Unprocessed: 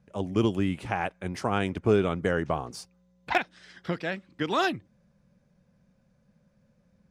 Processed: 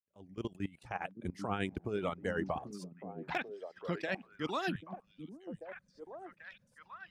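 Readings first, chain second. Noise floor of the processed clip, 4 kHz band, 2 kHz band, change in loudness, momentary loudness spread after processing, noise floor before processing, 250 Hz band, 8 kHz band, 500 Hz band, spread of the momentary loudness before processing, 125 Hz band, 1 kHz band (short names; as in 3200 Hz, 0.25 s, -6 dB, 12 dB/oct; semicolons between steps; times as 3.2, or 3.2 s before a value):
-73 dBFS, -10.0 dB, -8.5 dB, -11.5 dB, 14 LU, -68 dBFS, -10.5 dB, -11.5 dB, -10.5 dB, 13 LU, -11.0 dB, -9.5 dB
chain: opening faded in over 2.31 s; reverb removal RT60 1.6 s; level quantiser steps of 19 dB; tremolo 9.2 Hz, depth 53%; on a send: delay with a stepping band-pass 0.789 s, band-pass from 210 Hz, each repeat 1.4 oct, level -4 dB; on the sum: gain +5.5 dB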